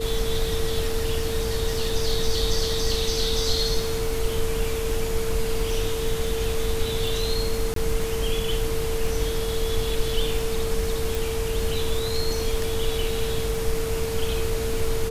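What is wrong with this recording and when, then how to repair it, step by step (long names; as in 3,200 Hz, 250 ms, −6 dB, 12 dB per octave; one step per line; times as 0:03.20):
surface crackle 23 per second −28 dBFS
whistle 450 Hz −27 dBFS
0:07.74–0:07.76: drop-out 23 ms
0:11.15: click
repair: click removal
notch filter 450 Hz, Q 30
repair the gap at 0:07.74, 23 ms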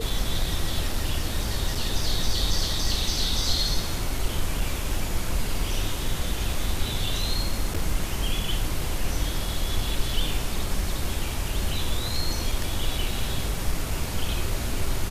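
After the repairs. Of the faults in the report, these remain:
none of them is left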